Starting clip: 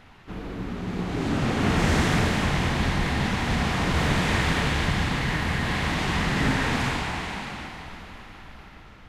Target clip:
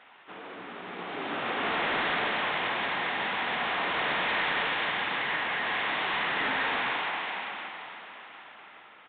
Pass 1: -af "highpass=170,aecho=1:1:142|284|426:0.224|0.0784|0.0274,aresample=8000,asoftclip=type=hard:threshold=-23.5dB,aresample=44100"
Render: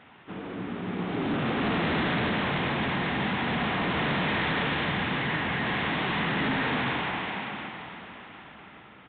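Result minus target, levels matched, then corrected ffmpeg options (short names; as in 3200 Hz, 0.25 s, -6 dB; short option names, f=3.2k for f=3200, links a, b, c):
125 Hz band +16.5 dB
-af "highpass=570,aecho=1:1:142|284|426:0.224|0.0784|0.0274,aresample=8000,asoftclip=type=hard:threshold=-23.5dB,aresample=44100"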